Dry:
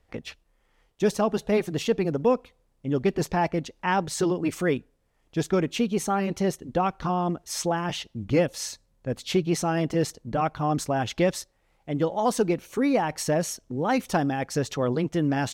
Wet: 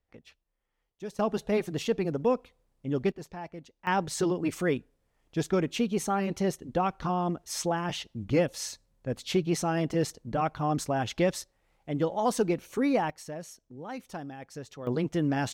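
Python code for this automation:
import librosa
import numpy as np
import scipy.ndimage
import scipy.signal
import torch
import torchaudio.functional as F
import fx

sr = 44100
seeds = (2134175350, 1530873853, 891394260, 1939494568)

y = fx.gain(x, sr, db=fx.steps((0.0, -16.0), (1.19, -4.0), (3.12, -16.0), (3.87, -3.0), (13.1, -15.0), (14.87, -3.0)))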